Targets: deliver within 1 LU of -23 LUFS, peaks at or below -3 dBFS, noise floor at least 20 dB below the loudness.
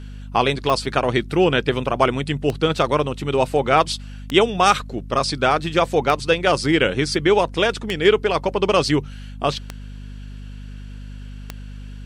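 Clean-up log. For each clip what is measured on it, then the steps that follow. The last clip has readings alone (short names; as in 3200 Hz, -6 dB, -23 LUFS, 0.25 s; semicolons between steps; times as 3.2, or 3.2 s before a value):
clicks 7; hum 50 Hz; harmonics up to 250 Hz; hum level -32 dBFS; loudness -19.5 LUFS; peak -2.0 dBFS; loudness target -23.0 LUFS
-> de-click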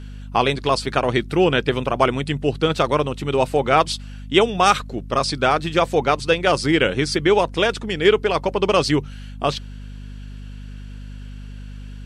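clicks 0; hum 50 Hz; harmonics up to 250 Hz; hum level -32 dBFS
-> de-hum 50 Hz, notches 5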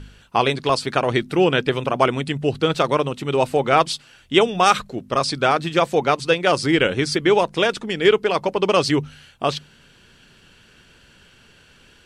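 hum none; loudness -19.5 LUFS; peak -2.0 dBFS; loudness target -23.0 LUFS
-> gain -3.5 dB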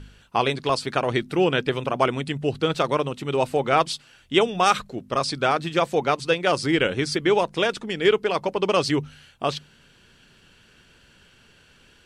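loudness -23.0 LUFS; peak -5.5 dBFS; noise floor -56 dBFS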